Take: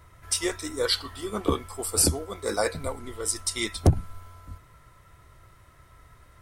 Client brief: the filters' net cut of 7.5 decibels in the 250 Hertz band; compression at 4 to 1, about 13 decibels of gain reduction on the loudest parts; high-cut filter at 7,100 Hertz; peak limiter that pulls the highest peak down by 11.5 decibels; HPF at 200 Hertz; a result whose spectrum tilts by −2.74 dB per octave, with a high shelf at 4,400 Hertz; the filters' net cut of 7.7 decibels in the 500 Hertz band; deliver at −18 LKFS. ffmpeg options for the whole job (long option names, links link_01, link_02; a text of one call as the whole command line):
ffmpeg -i in.wav -af "highpass=200,lowpass=7100,equalizer=frequency=250:width_type=o:gain=-5.5,equalizer=frequency=500:width_type=o:gain=-7.5,highshelf=frequency=4400:gain=-4.5,acompressor=threshold=-40dB:ratio=4,volume=30dB,alimiter=limit=-6.5dB:level=0:latency=1" out.wav